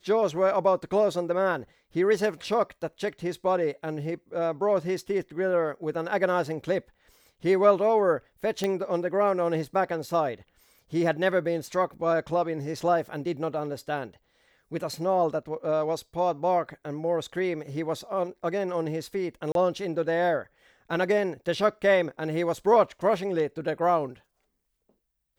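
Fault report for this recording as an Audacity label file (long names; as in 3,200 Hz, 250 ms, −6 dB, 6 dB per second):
8.640000	8.640000	click −14 dBFS
19.520000	19.550000	drop-out 32 ms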